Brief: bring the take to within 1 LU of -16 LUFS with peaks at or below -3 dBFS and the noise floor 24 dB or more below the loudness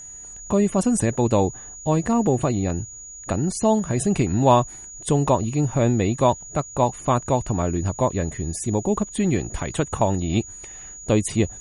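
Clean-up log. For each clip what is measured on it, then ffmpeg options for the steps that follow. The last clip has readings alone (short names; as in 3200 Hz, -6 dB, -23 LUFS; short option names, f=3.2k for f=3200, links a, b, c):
steady tone 6800 Hz; tone level -37 dBFS; loudness -22.5 LUFS; peak -4.0 dBFS; loudness target -16.0 LUFS
-> -af "bandreject=f=6.8k:w=30"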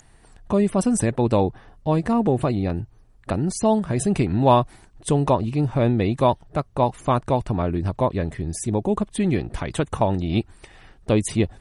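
steady tone none; loudness -22.5 LUFS; peak -4.5 dBFS; loudness target -16.0 LUFS
-> -af "volume=6.5dB,alimiter=limit=-3dB:level=0:latency=1"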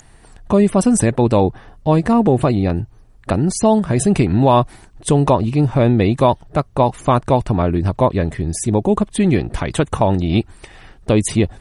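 loudness -16.5 LUFS; peak -3.0 dBFS; noise floor -46 dBFS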